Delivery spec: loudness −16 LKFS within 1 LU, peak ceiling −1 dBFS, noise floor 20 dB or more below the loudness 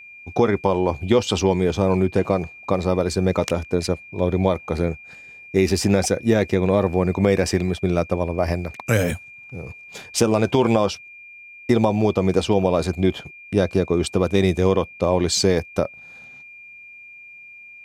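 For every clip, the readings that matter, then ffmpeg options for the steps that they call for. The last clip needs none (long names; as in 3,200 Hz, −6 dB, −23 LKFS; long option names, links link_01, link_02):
interfering tone 2,400 Hz; level of the tone −40 dBFS; integrated loudness −21.0 LKFS; sample peak −3.0 dBFS; target loudness −16.0 LKFS
→ -af "bandreject=frequency=2400:width=30"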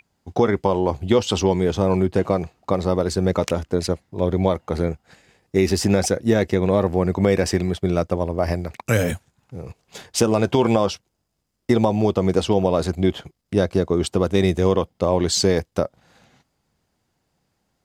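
interfering tone none found; integrated loudness −21.0 LKFS; sample peak −3.0 dBFS; target loudness −16.0 LKFS
→ -af "volume=5dB,alimiter=limit=-1dB:level=0:latency=1"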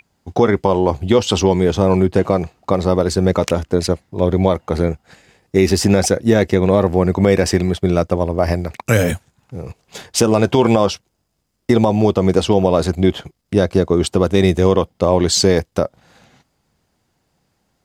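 integrated loudness −16.5 LKFS; sample peak −1.0 dBFS; background noise floor −68 dBFS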